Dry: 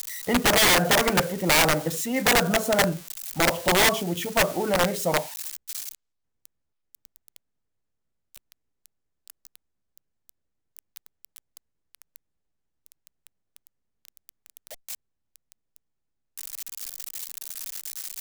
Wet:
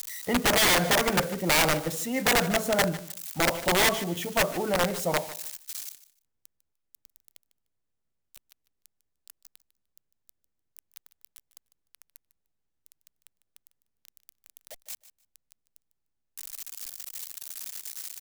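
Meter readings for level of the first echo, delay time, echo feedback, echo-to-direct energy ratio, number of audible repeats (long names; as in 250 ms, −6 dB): −16.5 dB, 150 ms, 19%, −16.5 dB, 2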